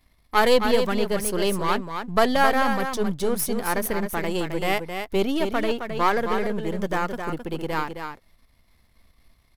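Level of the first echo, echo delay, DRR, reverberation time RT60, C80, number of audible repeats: -7.0 dB, 0.265 s, none, none, none, 1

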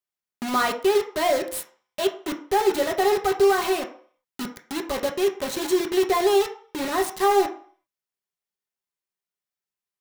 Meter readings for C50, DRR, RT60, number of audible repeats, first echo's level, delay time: 11.0 dB, 1.5 dB, 0.50 s, none, none, none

